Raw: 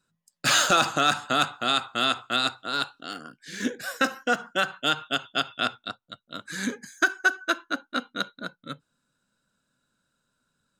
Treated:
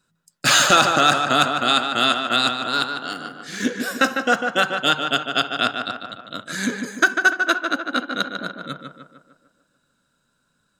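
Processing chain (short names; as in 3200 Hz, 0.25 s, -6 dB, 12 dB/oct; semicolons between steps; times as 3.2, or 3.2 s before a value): tape echo 0.149 s, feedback 57%, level -4.5 dB, low-pass 2700 Hz; gain +5.5 dB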